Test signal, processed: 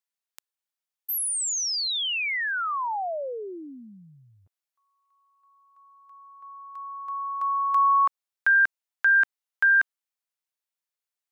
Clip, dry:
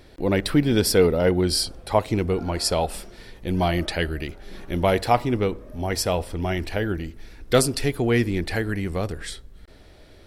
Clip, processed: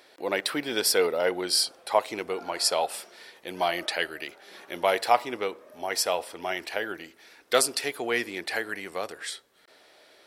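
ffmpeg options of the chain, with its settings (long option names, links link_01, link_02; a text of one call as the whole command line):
ffmpeg -i in.wav -af "highpass=600" out.wav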